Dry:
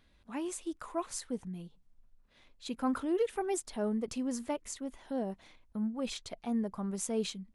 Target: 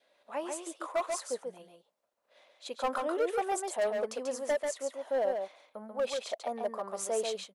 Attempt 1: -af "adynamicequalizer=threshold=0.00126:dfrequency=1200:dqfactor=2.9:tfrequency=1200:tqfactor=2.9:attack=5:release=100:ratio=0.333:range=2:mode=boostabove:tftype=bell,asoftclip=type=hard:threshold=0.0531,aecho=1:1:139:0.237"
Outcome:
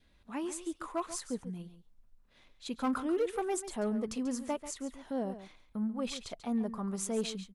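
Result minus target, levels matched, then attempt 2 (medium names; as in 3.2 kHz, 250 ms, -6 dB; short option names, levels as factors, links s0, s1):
echo-to-direct -8 dB; 500 Hz band -3.5 dB
-af "adynamicequalizer=threshold=0.00126:dfrequency=1200:dqfactor=2.9:tfrequency=1200:tqfactor=2.9:attack=5:release=100:ratio=0.333:range=2:mode=boostabove:tftype=bell,highpass=f=580:t=q:w=4.1,asoftclip=type=hard:threshold=0.0531,aecho=1:1:139:0.596"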